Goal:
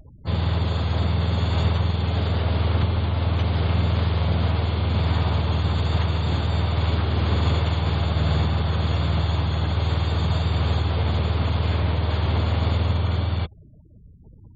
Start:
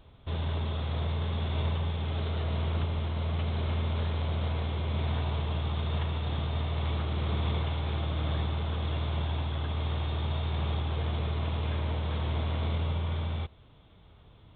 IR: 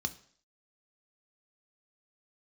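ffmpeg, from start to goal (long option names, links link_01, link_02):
-filter_complex "[0:a]asplit=3[link_01][link_02][link_03];[link_02]asetrate=55563,aresample=44100,atempo=0.793701,volume=-4dB[link_04];[link_03]asetrate=88200,aresample=44100,atempo=0.5,volume=-13dB[link_05];[link_01][link_04][link_05]amix=inputs=3:normalize=0,afftfilt=real='re*gte(hypot(re,im),0.00398)':imag='im*gte(hypot(re,im),0.00398)':win_size=1024:overlap=0.75,volume=7dB"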